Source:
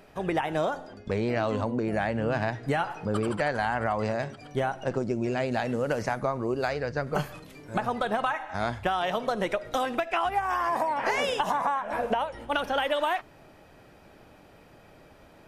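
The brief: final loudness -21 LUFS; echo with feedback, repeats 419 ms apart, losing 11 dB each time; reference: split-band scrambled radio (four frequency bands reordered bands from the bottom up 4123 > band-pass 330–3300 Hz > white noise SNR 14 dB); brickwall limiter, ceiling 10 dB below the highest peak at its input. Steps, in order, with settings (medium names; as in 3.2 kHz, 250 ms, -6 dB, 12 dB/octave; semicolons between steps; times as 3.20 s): peak limiter -24 dBFS; feedback delay 419 ms, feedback 28%, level -11 dB; four frequency bands reordered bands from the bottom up 4123; band-pass 330–3300 Hz; white noise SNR 14 dB; trim +10.5 dB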